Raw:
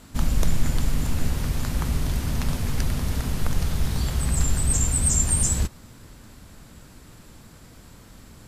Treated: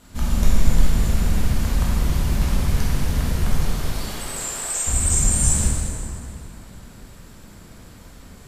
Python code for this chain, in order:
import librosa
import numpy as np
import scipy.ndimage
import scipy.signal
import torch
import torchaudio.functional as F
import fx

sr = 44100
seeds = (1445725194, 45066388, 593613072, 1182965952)

y = fx.highpass(x, sr, hz=fx.line((3.59, 220.0), (4.86, 580.0)), slope=24, at=(3.59, 4.86), fade=0.02)
y = fx.rev_plate(y, sr, seeds[0], rt60_s=2.7, hf_ratio=0.65, predelay_ms=0, drr_db=-6.5)
y = F.gain(torch.from_numpy(y), -4.0).numpy()